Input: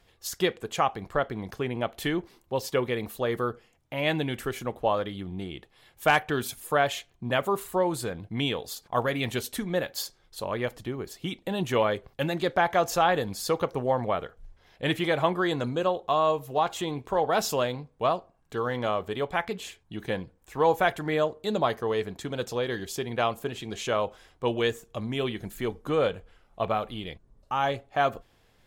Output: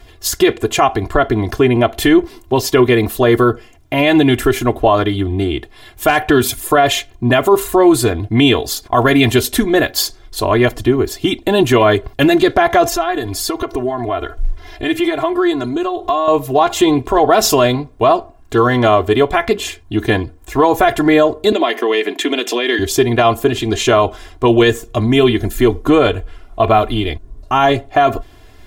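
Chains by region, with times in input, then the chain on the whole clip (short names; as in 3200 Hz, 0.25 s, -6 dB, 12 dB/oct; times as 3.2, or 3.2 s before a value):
12.86–16.28 compressor 3:1, threshold -41 dBFS + comb 2.9 ms, depth 92%
21.52–22.79 band shelf 2500 Hz +10 dB 1.1 oct + compressor 4:1, threshold -29 dBFS + steep high-pass 240 Hz
whole clip: low shelf 330 Hz +6.5 dB; comb 2.9 ms, depth 84%; maximiser +15 dB; gain -1 dB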